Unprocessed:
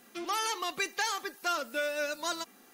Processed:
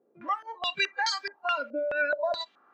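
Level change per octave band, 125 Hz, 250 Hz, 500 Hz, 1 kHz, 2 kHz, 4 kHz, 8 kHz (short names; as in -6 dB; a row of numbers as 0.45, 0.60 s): n/a, -2.5 dB, +4.5 dB, +2.5 dB, +4.5 dB, +3.0 dB, -7.5 dB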